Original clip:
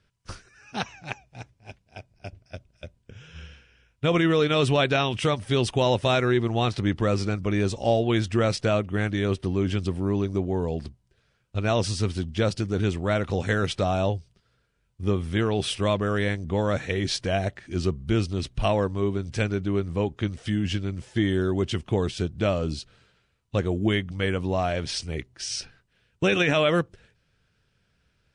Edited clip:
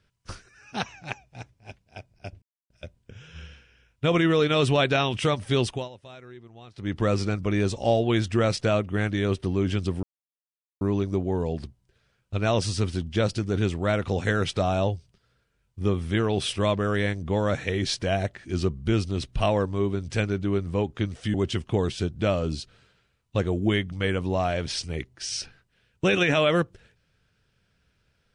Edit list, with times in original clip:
0:02.42–0:02.70: silence
0:05.61–0:07.02: duck −23 dB, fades 0.28 s
0:10.03: splice in silence 0.78 s
0:20.56–0:21.53: remove

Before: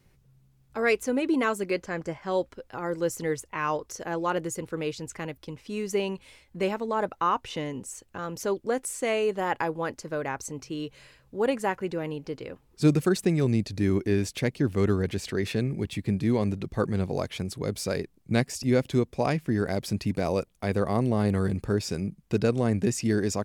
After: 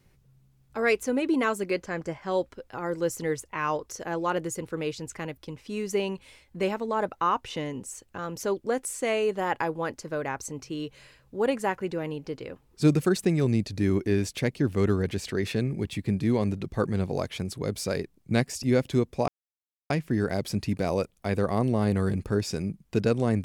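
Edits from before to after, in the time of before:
0:19.28: splice in silence 0.62 s

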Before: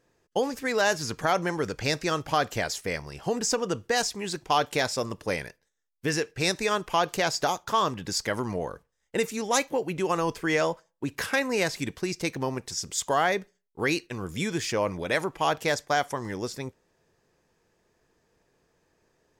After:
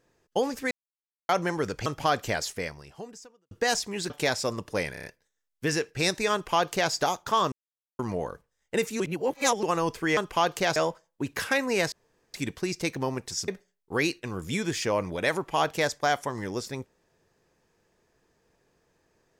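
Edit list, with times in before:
0:00.71–0:01.29: silence
0:01.86–0:02.14: remove
0:02.77–0:03.79: fade out quadratic
0:04.38–0:04.63: remove
0:05.46: stutter 0.03 s, 5 plays
0:06.74–0:07.33: duplicate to 0:10.58
0:07.93–0:08.40: silence
0:09.41–0:10.04: reverse
0:11.74: splice in room tone 0.42 s
0:12.88–0:13.35: remove

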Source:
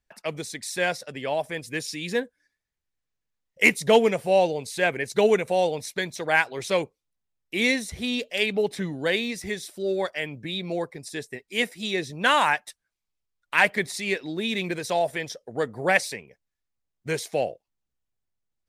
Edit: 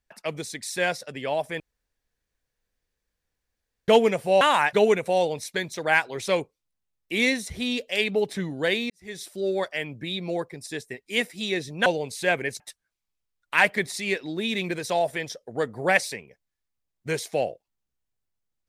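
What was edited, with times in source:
0:01.60–0:03.88: fill with room tone
0:04.41–0:05.15: swap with 0:12.28–0:12.60
0:09.32–0:09.63: fade in quadratic

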